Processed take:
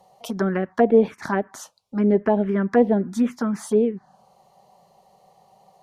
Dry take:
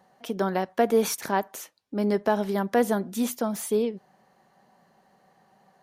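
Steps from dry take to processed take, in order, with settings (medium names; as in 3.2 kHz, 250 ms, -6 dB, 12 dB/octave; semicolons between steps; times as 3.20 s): low-pass that closes with the level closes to 1.3 kHz, closed at -20.5 dBFS; touch-sensitive phaser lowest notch 270 Hz, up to 1.4 kHz, full sweep at -18.5 dBFS; trim +7.5 dB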